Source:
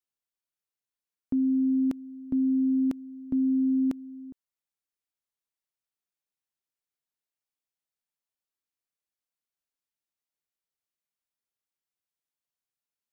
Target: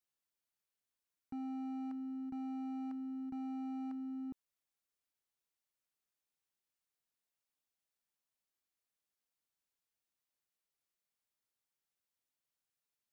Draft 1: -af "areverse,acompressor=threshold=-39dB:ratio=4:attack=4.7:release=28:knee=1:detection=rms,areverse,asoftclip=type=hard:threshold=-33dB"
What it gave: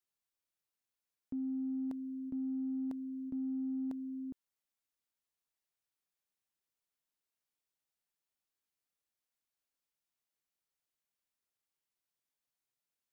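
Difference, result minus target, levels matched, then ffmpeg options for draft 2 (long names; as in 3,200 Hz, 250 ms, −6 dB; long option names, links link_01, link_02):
hard clipping: distortion −21 dB
-af "areverse,acompressor=threshold=-39dB:ratio=4:attack=4.7:release=28:knee=1:detection=rms,areverse,asoftclip=type=hard:threshold=-40dB"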